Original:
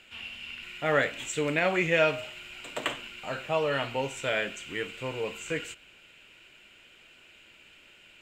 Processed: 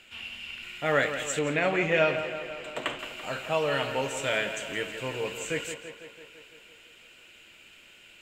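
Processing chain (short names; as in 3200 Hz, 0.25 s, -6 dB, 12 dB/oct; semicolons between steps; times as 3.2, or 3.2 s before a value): high shelf 5100 Hz +4 dB, from 1.39 s -6.5 dB, from 2.99 s +7.5 dB; tape echo 0.168 s, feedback 71%, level -9 dB, low-pass 4000 Hz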